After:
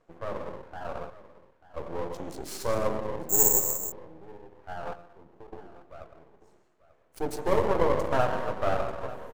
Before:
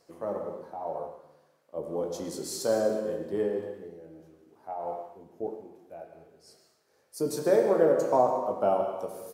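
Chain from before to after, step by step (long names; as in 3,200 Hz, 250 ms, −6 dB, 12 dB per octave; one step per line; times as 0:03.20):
adaptive Wiener filter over 9 samples
0:01.10–0:01.76: high-pass filter 880 Hz 12 dB per octave
0:04.93–0:05.53: downward compressor 8 to 1, threshold −44 dBFS, peak gain reduction 15 dB
half-wave rectification
single-tap delay 890 ms −17 dB
0:03.29–0:03.92: bad sample-rate conversion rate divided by 6×, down none, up zero stuff
level +2.5 dB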